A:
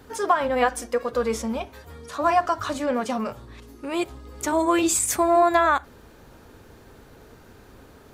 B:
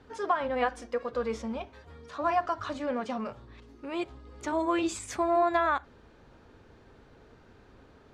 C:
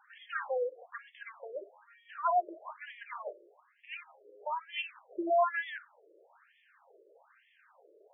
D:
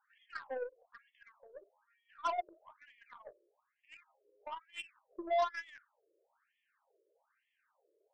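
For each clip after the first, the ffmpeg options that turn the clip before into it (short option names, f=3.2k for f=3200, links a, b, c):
-af "lowpass=4.5k,volume=-7dB"
-af "highshelf=f=2.6k:g=8,asoftclip=type=tanh:threshold=-14.5dB,afftfilt=real='re*between(b*sr/1024,430*pow(2500/430,0.5+0.5*sin(2*PI*1.1*pts/sr))/1.41,430*pow(2500/430,0.5+0.5*sin(2*PI*1.1*pts/sr))*1.41)':imag='im*between(b*sr/1024,430*pow(2500/430,0.5+0.5*sin(2*PI*1.1*pts/sr))/1.41,430*pow(2500/430,0.5+0.5*sin(2*PI*1.1*pts/sr))*1.41)':win_size=1024:overlap=0.75"
-af "bandreject=f=730:w=23,aeval=exprs='0.126*(cos(1*acos(clip(val(0)/0.126,-1,1)))-cos(1*PI/2))+0.0126*(cos(7*acos(clip(val(0)/0.126,-1,1)))-cos(7*PI/2))+0.00126*(cos(8*acos(clip(val(0)/0.126,-1,1)))-cos(8*PI/2))':c=same,volume=-4.5dB"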